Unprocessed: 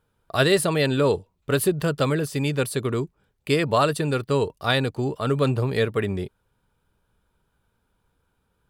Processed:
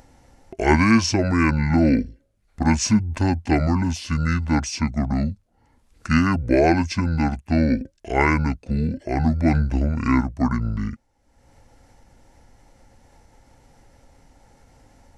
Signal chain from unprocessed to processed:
change of speed 0.573×
upward compression, threshold −40 dBFS
level +2.5 dB

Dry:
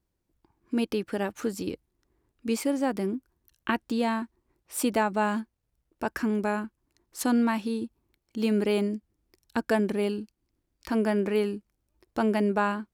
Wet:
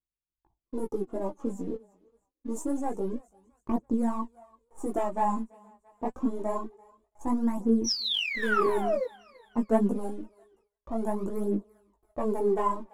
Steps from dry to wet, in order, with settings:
gain on one half-wave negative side −3 dB
Chebyshev band-stop filter 1,100–6,600 Hz, order 4
sound drawn into the spectrogram fall, 0:07.84–0:09.06, 470–6,000 Hz −29 dBFS
low-pass that shuts in the quiet parts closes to 1,500 Hz, open at −22.5 dBFS
leveller curve on the samples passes 1
multi-voice chorus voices 4, 1.2 Hz, delay 19 ms, depth 3.7 ms
feedback echo with a high-pass in the loop 337 ms, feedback 48%, high-pass 650 Hz, level −22 dB
phase shifter 0.26 Hz, delay 4.9 ms, feedback 60%
noise gate with hold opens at −54 dBFS
level −1.5 dB

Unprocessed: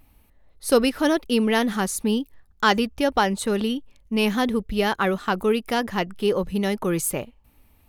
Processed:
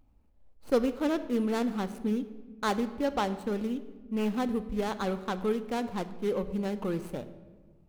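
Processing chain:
running median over 25 samples
on a send: convolution reverb RT60 1.4 s, pre-delay 4 ms, DRR 11 dB
on the sum: level −7.5 dB

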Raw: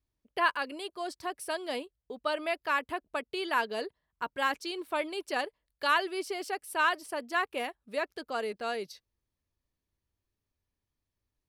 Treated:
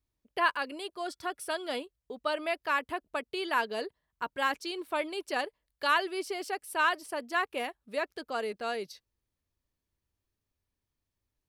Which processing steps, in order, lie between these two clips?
0:01.06–0:01.81: hollow resonant body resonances 1,400/3,400 Hz, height 13 dB

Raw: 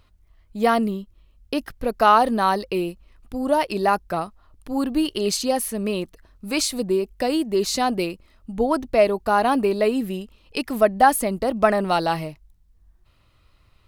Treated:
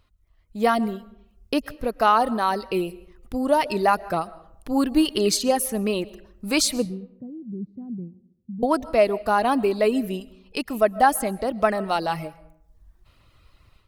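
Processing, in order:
reverb reduction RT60 0.52 s
automatic gain control gain up to 9.5 dB
0:06.85–0:08.63: flat-topped band-pass 160 Hz, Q 1.8
comb and all-pass reverb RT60 0.73 s, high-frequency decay 0.6×, pre-delay 90 ms, DRR 19.5 dB
level −5.5 dB

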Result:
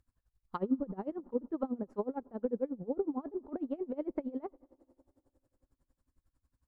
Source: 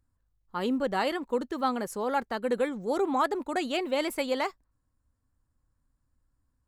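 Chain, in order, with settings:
treble cut that deepens with the level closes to 360 Hz, closed at −27 dBFS
on a send at −22 dB: convolution reverb RT60 2.8 s, pre-delay 5 ms
on the sum: tremolo with a sine in dB 11 Hz, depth 23 dB
level +3 dB

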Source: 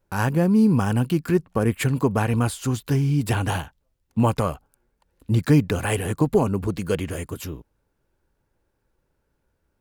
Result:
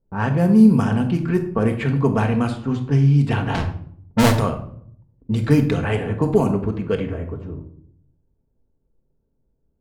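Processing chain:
0:03.54–0:04.35: each half-wave held at its own peak
low-pass that shuts in the quiet parts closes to 440 Hz, open at −14 dBFS
rectangular room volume 930 cubic metres, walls furnished, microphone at 1.6 metres

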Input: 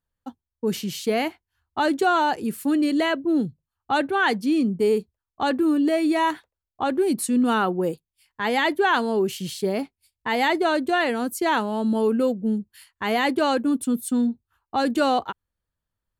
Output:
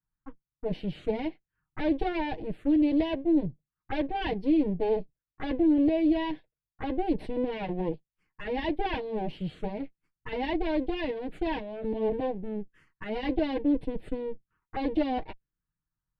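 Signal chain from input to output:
lower of the sound and its delayed copy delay 6.4 ms
phaser swept by the level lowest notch 550 Hz, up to 1,300 Hz, full sweep at −25.5 dBFS
head-to-tape spacing loss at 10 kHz 32 dB

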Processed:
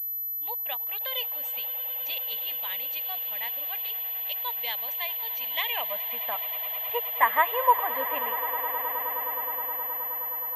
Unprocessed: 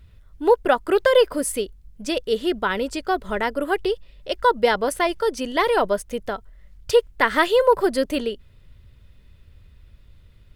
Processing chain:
phaser with its sweep stopped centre 1,400 Hz, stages 6
band-pass filter sweep 4,700 Hz → 1,200 Hz, 0:05.39–0:06.35
on a send: echo that builds up and dies away 105 ms, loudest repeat 8, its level −17 dB
on the sum: switching amplifier with a slow clock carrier 12,000 Hz
level +5.5 dB

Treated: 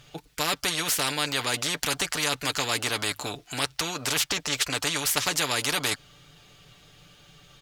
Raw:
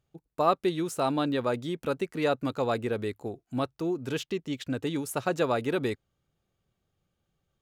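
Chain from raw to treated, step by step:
parametric band 3,500 Hz +13 dB 2.6 octaves
comb filter 6.8 ms, depth 60%
every bin compressed towards the loudest bin 4 to 1

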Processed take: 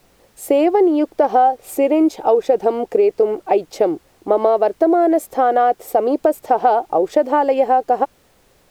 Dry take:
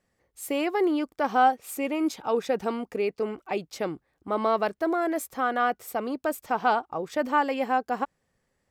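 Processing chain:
flat-topped bell 510 Hz +13.5 dB
downward compressor, threshold −16 dBFS, peak gain reduction 12 dB
background noise pink −61 dBFS
level +5 dB

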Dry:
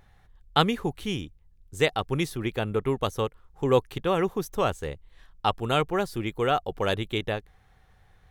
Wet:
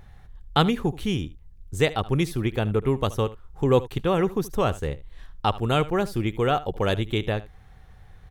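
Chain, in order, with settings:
low-shelf EQ 270 Hz +7 dB
in parallel at −0.5 dB: downward compressor, threshold −33 dBFS, peak gain reduction 18 dB
on the sum: single-tap delay 75 ms −18 dB
level −1.5 dB

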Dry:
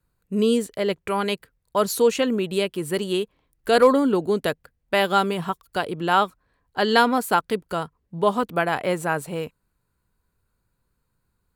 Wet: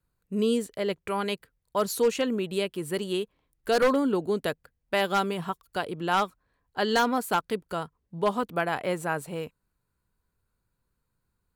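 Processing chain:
wave folding −10 dBFS
level −5 dB

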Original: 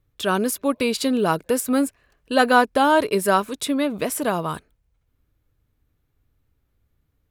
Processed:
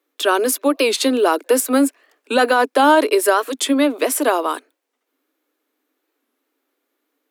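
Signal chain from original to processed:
Butterworth high-pass 260 Hz 96 dB per octave
brickwall limiter −11.5 dBFS, peak gain reduction 9 dB
wow of a warped record 45 rpm, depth 160 cents
level +6.5 dB

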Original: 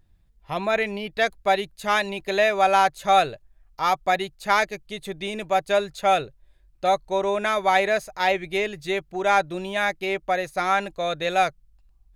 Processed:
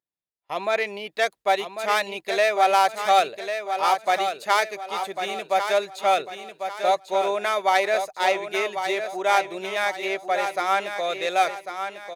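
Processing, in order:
stylus tracing distortion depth 0.055 ms
high-pass filter 370 Hz 12 dB per octave
repeating echo 1,097 ms, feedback 37%, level −8 dB
noise gate with hold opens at −44 dBFS
parametric band 1,600 Hz −3 dB 0.32 octaves

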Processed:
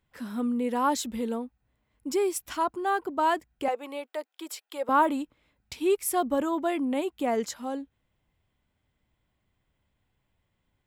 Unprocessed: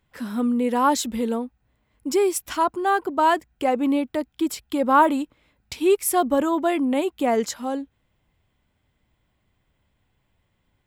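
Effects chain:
0:03.68–0:04.89: high-pass filter 450 Hz 24 dB per octave
level −6 dB

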